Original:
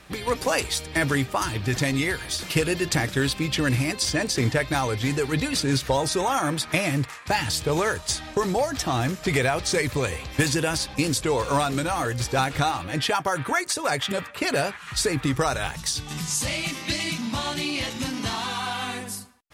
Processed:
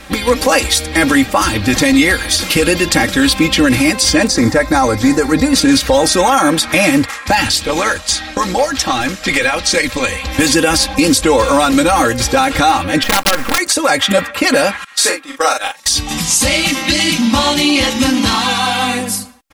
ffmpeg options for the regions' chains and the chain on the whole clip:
ffmpeg -i in.wav -filter_complex "[0:a]asettb=1/sr,asplit=3[link_01][link_02][link_03];[link_01]atrim=end=4.274[link_04];[link_02]atrim=start=4.27:end=5.56,asetpts=PTS-STARTPTS,afade=type=in:duration=0.004:curve=qsin,afade=type=out:start_time=1.286:duration=0.004:curve=qsin,acrossover=split=9100[link_05][link_06];[link_06]acompressor=threshold=-51dB:ratio=4:attack=1:release=60[link_07];[link_05][link_07]amix=inputs=2:normalize=0,equalizer=frequency=3000:width_type=o:width=0.68:gain=-13.5,aeval=exprs='sgn(val(0))*max(abs(val(0))-0.00141,0)':channel_layout=same[link_08];[link_03]atrim=start=5.556[link_09];[link_04][link_08]acrossfade=duration=0.004:curve1=hsin:curve2=qsin[link_10];[link_10][link_09]acrossfade=duration=0.004:curve1=qsin:curve2=hsin,asettb=1/sr,asplit=3[link_11][link_12][link_13];[link_11]atrim=end=7.474[link_14];[link_12]atrim=start=7.47:end=10.24,asetpts=PTS-STARTPTS,afade=type=in:duration=0.004:curve=qsin,afade=type=out:start_time=2.766:duration=0.004:curve=qsin,lowpass=frequency=3800:poles=1,tiltshelf=frequency=1400:gain=-5.5,tremolo=f=120:d=0.571[link_15];[link_13]atrim=start=10.236[link_16];[link_14][link_15]acrossfade=duration=0.004:curve1=hsin:curve2=qsin[link_17];[link_17][link_16]acrossfade=duration=0.004:curve1=qsin:curve2=hsin,asettb=1/sr,asplit=3[link_18][link_19][link_20];[link_18]atrim=end=13.034[link_21];[link_19]atrim=start=13.03:end=13.58,asetpts=PTS-STARTPTS,afade=type=in:duration=0.004:curve=qsin,afade=type=out:start_time=0.546:duration=0.004:curve=qsin,lowpass=frequency=2600:width=0.5412,lowpass=frequency=2600:width=1.3066,aeval=exprs='(mod(5.62*val(0)+1,2)-1)/5.62':channel_layout=same,acrusher=bits=4:dc=4:mix=0:aa=0.000001[link_22];[link_20]atrim=start=13.576[link_23];[link_21][link_22]acrossfade=duration=0.004:curve1=hsin:curve2=qsin[link_24];[link_24][link_23]acrossfade=duration=0.004:curve1=qsin:curve2=hsin,asettb=1/sr,asplit=3[link_25][link_26][link_27];[link_25]atrim=end=14.844[link_28];[link_26]atrim=start=14.84:end=15.86,asetpts=PTS-STARTPTS,afade=type=in:duration=0.004:curve=qsin,afade=type=out:start_time=1.016:duration=0.004:curve=qsin,highpass=520,agate=range=-18dB:threshold=-29dB:ratio=16:release=100:detection=peak,asplit=2[link_29][link_30];[link_30]adelay=39,volume=-4dB[link_31];[link_29][link_31]amix=inputs=2:normalize=0,atrim=end_sample=44982[link_32];[link_27]atrim=start=15.856[link_33];[link_28][link_32]acrossfade=duration=0.004:curve1=hsin:curve2=qsin[link_34];[link_34][link_33]acrossfade=duration=0.004:curve1=qsin:curve2=hsin,aecho=1:1:3.7:0.84,alimiter=level_in=13.5dB:limit=-1dB:release=50:level=0:latency=1,volume=-1dB" out.wav

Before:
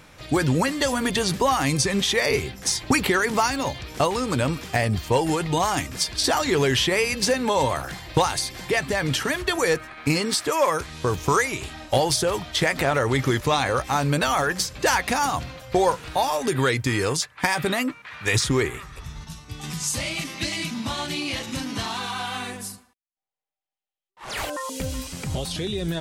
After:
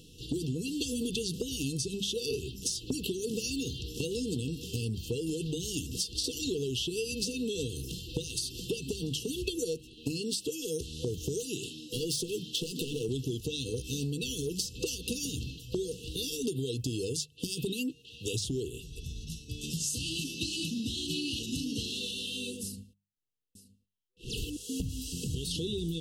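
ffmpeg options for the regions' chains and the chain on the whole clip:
ffmpeg -i in.wav -filter_complex "[0:a]asettb=1/sr,asplit=3[link_01][link_02][link_03];[link_01]atrim=end=11.404[link_04];[link_02]atrim=start=11.4:end=13.09,asetpts=PTS-STARTPTS,afade=type=in:duration=0.004:curve=qsin,afade=type=out:start_time=1.686:duration=0.004:curve=qsin,highpass=frequency=130:width=0.5412,highpass=frequency=130:width=1.3066,asoftclip=type=hard:threshold=-19.5dB[link_05];[link_03]atrim=start=13.086[link_06];[link_04][link_05]acrossfade=duration=0.004:curve1=hsin:curve2=qsin[link_07];[link_07][link_06]acrossfade=duration=0.004:curve1=qsin:curve2=hsin,asettb=1/sr,asplit=3[link_08][link_09][link_10];[link_08]atrim=end=22.634[link_11];[link_09]atrim=start=22.63:end=24.89,asetpts=PTS-STARTPTS,afade=type=in:duration=0.004:curve=qsin,afade=type=out:start_time=2.256:duration=0.004:curve=qsin,bass=frequency=250:gain=9,treble=frequency=4000:gain=-4,aecho=1:1:921:0.133,atrim=end_sample=99666[link_12];[link_10]atrim=start=24.886[link_13];[link_11][link_12]acrossfade=duration=0.004:curve1=hsin:curve2=qsin[link_14];[link_14][link_13]acrossfade=duration=0.004:curve1=qsin:curve2=hsin,afftfilt=real='re*(1-between(b*sr/4096,500,2600))':imag='im*(1-between(b*sr/4096,500,2600))':win_size=4096:overlap=0.75,acompressor=threshold=-28dB:ratio=10,bandreject=frequency=50:width_type=h:width=6,bandreject=frequency=100:width_type=h:width=6,bandreject=frequency=150:width_type=h:width=6,bandreject=frequency=200:width_type=h:width=6,volume=-1.5dB" out.wav

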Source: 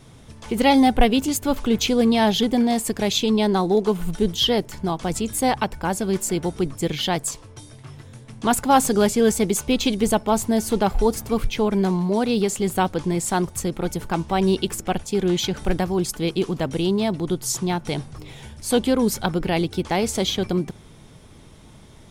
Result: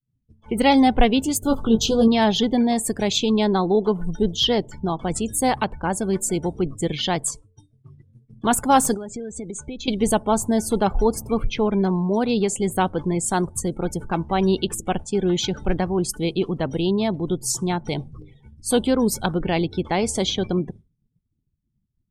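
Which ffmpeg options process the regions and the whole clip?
ffmpeg -i in.wav -filter_complex "[0:a]asettb=1/sr,asplit=3[link_01][link_02][link_03];[link_01]atrim=end=1.434[link_04];[link_02]atrim=start=1.43:end=2.08,asetpts=PTS-STARTPTS,afade=type=in:duration=0.004:curve=qsin,afade=type=out:start_time=0.646:duration=0.004:curve=qsin,asplit=2[link_05][link_06];[link_06]adelay=18,volume=-5dB[link_07];[link_05][link_07]amix=inputs=2:normalize=0,atrim=end_sample=28665,aeval=exprs='val(0)+0.0158*(sin(2*PI*50*n/s)+sin(2*PI*2*50*n/s)/2+sin(2*PI*3*50*n/s)/3+sin(2*PI*4*50*n/s)/4+sin(2*PI*5*50*n/s)/5)':channel_layout=same,asuperstop=centerf=2100:order=4:qfactor=1.5[link_08];[link_03]atrim=start=2.076[link_09];[link_04][link_08]acrossfade=duration=0.004:curve1=hsin:curve2=qsin[link_10];[link_10][link_09]acrossfade=duration=0.004:curve1=qsin:curve2=hsin,asettb=1/sr,asplit=3[link_11][link_12][link_13];[link_11]atrim=end=8.944[link_14];[link_12]atrim=start=8.94:end=9.88,asetpts=PTS-STARTPTS,afade=type=in:duration=0.004:curve=qsin,afade=type=out:start_time=0.936:duration=0.004:curve=qsin,lowpass=frequency=8700:width=0.5412,lowpass=frequency=8700:width=1.3066,acompressor=threshold=-27dB:ratio=16:attack=3.2:release=140:knee=1:detection=peak,bandreject=frequency=2900:width=12[link_15];[link_13]atrim=start=9.876[link_16];[link_14][link_15]acrossfade=duration=0.004:curve1=hsin:curve2=qsin[link_17];[link_17][link_16]acrossfade=duration=0.004:curve1=qsin:curve2=hsin,afftdn=noise_reduction=28:noise_floor=-37,agate=range=-33dB:threshold=-34dB:ratio=3:detection=peak,equalizer=frequency=8800:width=4.2:gain=4.5" out.wav

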